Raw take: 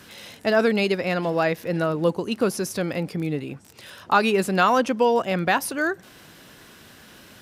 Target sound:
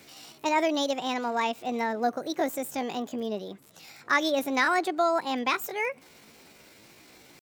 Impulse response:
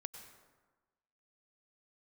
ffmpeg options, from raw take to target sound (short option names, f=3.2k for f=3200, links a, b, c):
-af "asetrate=62367,aresample=44100,atempo=0.707107,bandreject=f=60:t=h:w=6,bandreject=f=120:t=h:w=6,volume=-5.5dB"